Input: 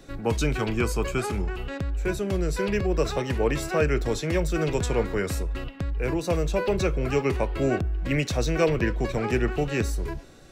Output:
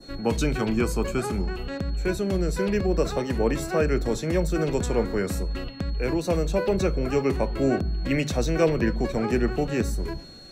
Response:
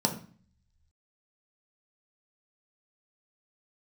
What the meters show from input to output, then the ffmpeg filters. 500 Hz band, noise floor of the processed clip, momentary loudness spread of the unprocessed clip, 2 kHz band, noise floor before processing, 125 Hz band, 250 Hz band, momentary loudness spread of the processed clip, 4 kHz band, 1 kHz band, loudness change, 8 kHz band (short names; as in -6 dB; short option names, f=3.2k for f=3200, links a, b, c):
+1.0 dB, -37 dBFS, 6 LU, -2.0 dB, -39 dBFS, -0.5 dB, +2.5 dB, 6 LU, -0.5 dB, -0.5 dB, +0.5 dB, -0.5 dB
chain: -filter_complex "[0:a]aeval=exprs='val(0)+0.00562*sin(2*PI*4300*n/s)':c=same,adynamicequalizer=threshold=0.00631:dfrequency=3000:dqfactor=0.83:tfrequency=3000:tqfactor=0.83:attack=5:release=100:ratio=0.375:range=2.5:mode=cutabove:tftype=bell,asplit=2[a][b];[1:a]atrim=start_sample=2205,lowshelf=f=320:g=9[c];[b][c]afir=irnorm=-1:irlink=0,volume=-28.5dB[d];[a][d]amix=inputs=2:normalize=0"